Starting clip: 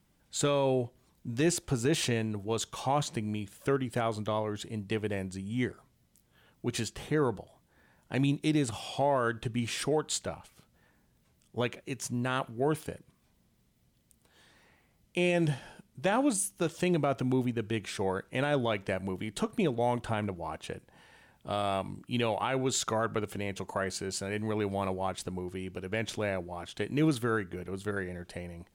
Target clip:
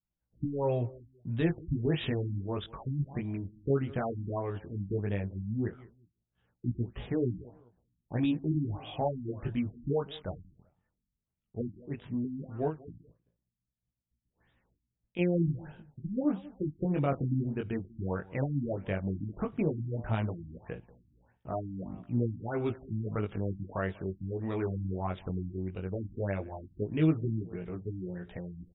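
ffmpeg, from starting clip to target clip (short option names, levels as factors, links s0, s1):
-filter_complex "[0:a]agate=range=0.0224:threshold=0.002:ratio=3:detection=peak,lowshelf=f=130:g=10.5,asettb=1/sr,asplit=3[s0][s1][s2];[s0]atrim=end=12.684[s3];[s1]atrim=start=12.68:end=15.19,asetpts=PTS-STARTPTS,afade=t=in:d=0.004:c=qsin,afade=t=out:st=2.506:d=0.004:c=qsin,acompressor=threshold=0.0158:ratio=6[s4];[s2]atrim=start=15.186[s5];[s3][s4]acrossfade=d=0.004:c1=hsin:c2=qsin[s6];[s6][s5]acrossfade=d=0.004:c1=qsin:c2=hsin,asplit=2[s7][s8];[s8]adelay=192,lowpass=f=1300:p=1,volume=0.0944,asplit=2[s9][s10];[s10]adelay=192,lowpass=f=1300:p=1,volume=0.3[s11];[s7][s9][s11]amix=inputs=3:normalize=0,flanger=delay=16.5:depth=5.5:speed=0.14,afftfilt=real='re*lt(b*sr/1024,310*pow(3900/310,0.5+0.5*sin(2*PI*1.6*pts/sr)))':imag='im*lt(b*sr/1024,310*pow(3900/310,0.5+0.5*sin(2*PI*1.6*pts/sr)))':win_size=1024:overlap=0.75"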